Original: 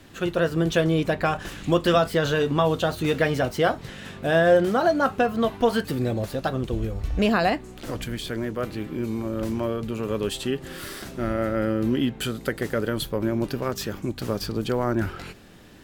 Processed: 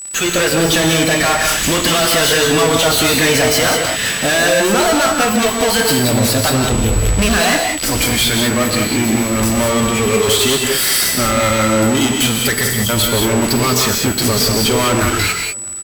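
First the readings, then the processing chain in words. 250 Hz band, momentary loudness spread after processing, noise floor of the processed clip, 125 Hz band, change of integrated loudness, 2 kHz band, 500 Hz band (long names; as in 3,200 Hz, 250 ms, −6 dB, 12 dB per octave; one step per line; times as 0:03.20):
+9.0 dB, 3 LU, −20 dBFS, +9.0 dB, +11.5 dB, +13.5 dB, +7.0 dB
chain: time-frequency box erased 0:12.64–0:12.89, 220–3,000 Hz
noise reduction from a noise print of the clip's start 8 dB
drawn EQ curve 130 Hz 0 dB, 1,000 Hz +6 dB, 2,000 Hz +14 dB
in parallel at +0.5 dB: downward compressor, threshold −33 dBFS, peak gain reduction 22 dB
on the sum: fuzz pedal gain 33 dB, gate −36 dBFS
steady tone 7,900 Hz −27 dBFS
slap from a distant wall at 110 metres, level −27 dB
reverb whose tail is shaped and stops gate 220 ms rising, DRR 2 dB
level −1 dB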